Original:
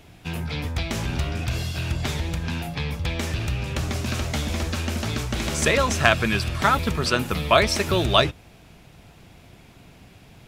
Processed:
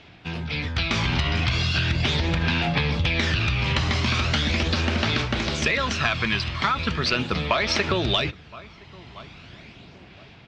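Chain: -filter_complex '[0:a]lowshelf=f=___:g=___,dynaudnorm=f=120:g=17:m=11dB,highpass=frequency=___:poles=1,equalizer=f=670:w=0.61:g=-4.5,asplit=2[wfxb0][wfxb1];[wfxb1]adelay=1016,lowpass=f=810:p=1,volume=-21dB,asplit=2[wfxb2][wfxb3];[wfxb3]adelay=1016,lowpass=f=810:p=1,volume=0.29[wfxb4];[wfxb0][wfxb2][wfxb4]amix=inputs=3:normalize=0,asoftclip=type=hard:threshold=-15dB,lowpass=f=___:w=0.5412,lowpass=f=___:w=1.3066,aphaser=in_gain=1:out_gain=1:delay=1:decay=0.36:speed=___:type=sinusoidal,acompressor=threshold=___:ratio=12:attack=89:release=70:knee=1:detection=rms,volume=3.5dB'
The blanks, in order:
390, -8.5, 74, 4.7k, 4.7k, 0.39, -27dB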